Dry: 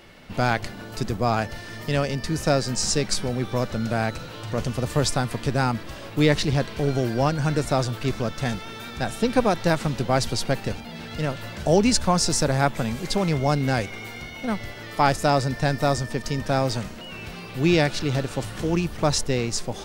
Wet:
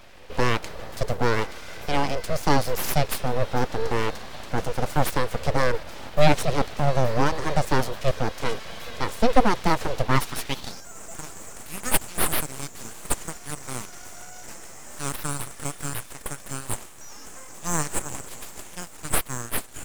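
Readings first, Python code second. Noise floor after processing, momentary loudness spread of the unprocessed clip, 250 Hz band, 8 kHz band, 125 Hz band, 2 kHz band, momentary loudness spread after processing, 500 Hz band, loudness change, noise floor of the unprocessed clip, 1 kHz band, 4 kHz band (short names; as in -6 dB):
-42 dBFS, 12 LU, -6.0 dB, -0.5 dB, -5.0 dB, -1.5 dB, 16 LU, -3.0 dB, -2.5 dB, -38 dBFS, -0.5 dB, -4.5 dB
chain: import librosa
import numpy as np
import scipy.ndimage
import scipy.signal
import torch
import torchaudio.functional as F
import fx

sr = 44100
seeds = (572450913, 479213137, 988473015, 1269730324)

y = fx.filter_sweep_highpass(x, sr, from_hz=260.0, to_hz=3700.0, start_s=10.02, end_s=10.88, q=3.6)
y = np.abs(y)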